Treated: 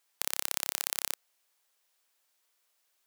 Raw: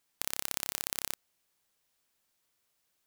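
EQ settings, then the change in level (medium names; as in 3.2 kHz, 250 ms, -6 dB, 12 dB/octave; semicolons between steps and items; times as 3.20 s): high-pass 480 Hz 12 dB/octave; +2.5 dB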